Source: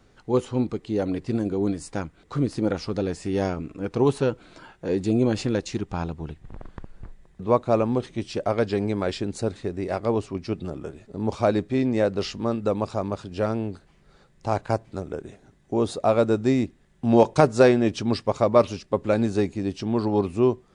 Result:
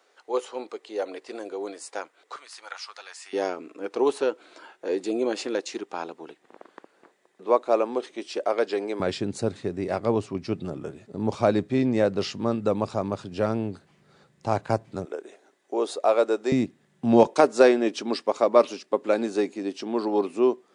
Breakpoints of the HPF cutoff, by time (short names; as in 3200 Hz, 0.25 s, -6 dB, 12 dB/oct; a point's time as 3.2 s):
HPF 24 dB/oct
450 Hz
from 2.36 s 1000 Hz
from 3.33 s 330 Hz
from 9 s 100 Hz
from 15.05 s 360 Hz
from 16.52 s 130 Hz
from 17.27 s 270 Hz